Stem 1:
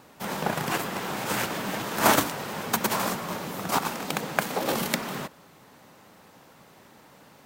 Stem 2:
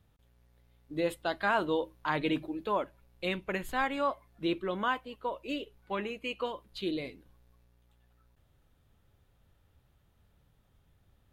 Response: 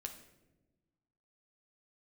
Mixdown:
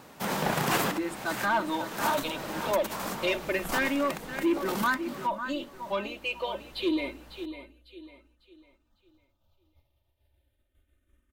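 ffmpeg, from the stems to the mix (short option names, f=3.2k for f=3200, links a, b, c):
-filter_complex "[0:a]alimiter=limit=-11.5dB:level=0:latency=1:release=385,volume=2dB[a];[1:a]agate=range=-33dB:threshold=-58dB:ratio=3:detection=peak,aecho=1:1:3.3:0.83,asplit=2[b][c];[c]afreqshift=-0.28[d];[b][d]amix=inputs=2:normalize=1,volume=-5dB,asplit=3[e][f][g];[f]volume=-12dB[h];[g]apad=whole_len=328699[i];[a][i]sidechaincompress=threshold=-51dB:ratio=6:attack=11:release=1070[j];[h]aecho=0:1:550|1100|1650|2200|2750:1|0.35|0.122|0.0429|0.015[k];[j][e][k]amix=inputs=3:normalize=0,bandreject=f=50:t=h:w=6,bandreject=f=100:t=h:w=6,dynaudnorm=f=210:g=9:m=10dB,asoftclip=type=tanh:threshold=-19dB"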